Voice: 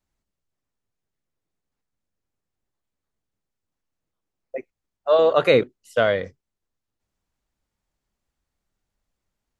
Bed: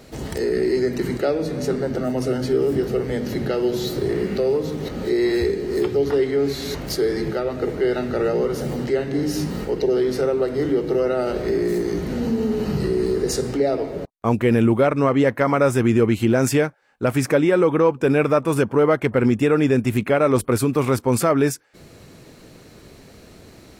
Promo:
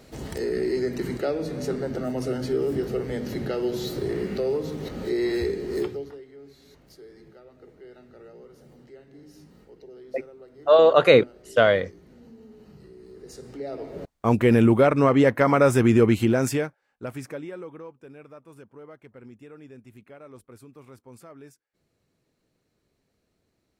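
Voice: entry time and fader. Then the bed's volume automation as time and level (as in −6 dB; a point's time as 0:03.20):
5.60 s, +1.5 dB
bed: 0:05.82 −5.5 dB
0:06.23 −26.5 dB
0:13.03 −26.5 dB
0:14.33 −0.5 dB
0:16.12 −0.5 dB
0:18.11 −28.5 dB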